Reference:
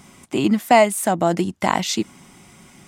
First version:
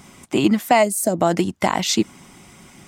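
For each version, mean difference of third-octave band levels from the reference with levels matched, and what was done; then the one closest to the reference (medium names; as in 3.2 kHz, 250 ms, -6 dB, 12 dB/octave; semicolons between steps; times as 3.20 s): 2.0 dB: peaking EQ 10 kHz -2.5 dB 0.23 oct; harmonic-percussive split percussive +4 dB; peak limiter -5 dBFS, peak gain reduction 6.5 dB; time-frequency box 0.83–1.15 s, 670–4000 Hz -14 dB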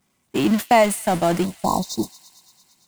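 8.0 dB: jump at every zero crossing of -19 dBFS; spectral selection erased 1.46–2.46 s, 1.1–3.6 kHz; gate -18 dBFS, range -41 dB; on a send: feedback echo behind a high-pass 113 ms, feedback 77%, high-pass 2.9 kHz, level -15 dB; on the sum: trim -3 dB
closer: first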